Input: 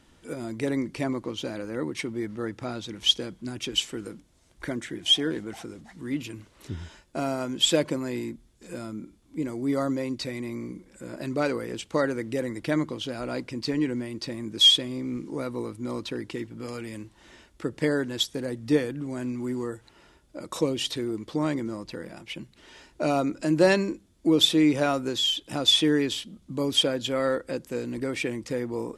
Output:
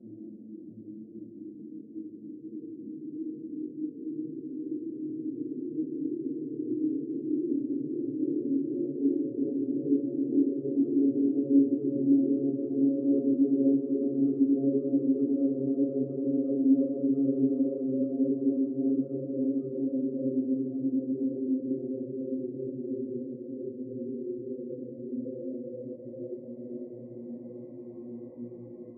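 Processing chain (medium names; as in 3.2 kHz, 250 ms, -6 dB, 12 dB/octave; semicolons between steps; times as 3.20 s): Paulstretch 20×, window 1.00 s, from 9.04 s; low-pass sweep 400 Hz -> 810 Hz, 24.27–27.88 s; spectral contrast expander 1.5:1; trim -1.5 dB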